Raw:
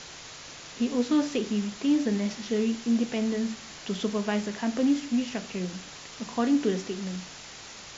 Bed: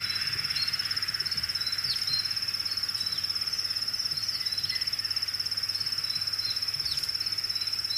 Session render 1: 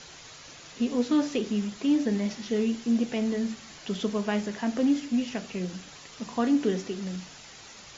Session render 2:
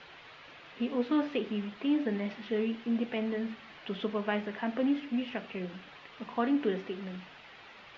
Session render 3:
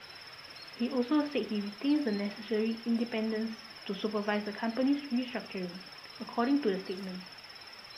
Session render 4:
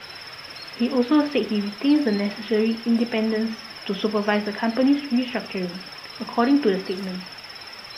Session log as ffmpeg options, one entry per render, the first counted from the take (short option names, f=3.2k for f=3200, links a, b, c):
-af "afftdn=nr=6:nf=-45"
-af "lowpass=f=3.1k:w=0.5412,lowpass=f=3.1k:w=1.3066,lowshelf=f=270:g=-10.5"
-filter_complex "[1:a]volume=-21dB[a];[0:a][a]amix=inputs=2:normalize=0"
-af "volume=10dB"